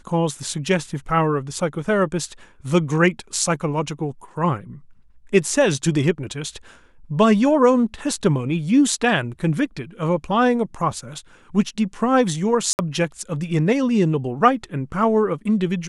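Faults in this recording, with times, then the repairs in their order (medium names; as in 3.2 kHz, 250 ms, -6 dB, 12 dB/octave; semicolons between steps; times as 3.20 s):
12.73–12.79 s: dropout 59 ms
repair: interpolate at 12.73 s, 59 ms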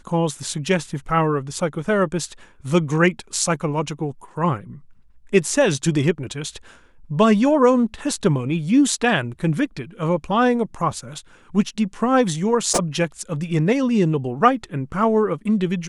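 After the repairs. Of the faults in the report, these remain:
nothing left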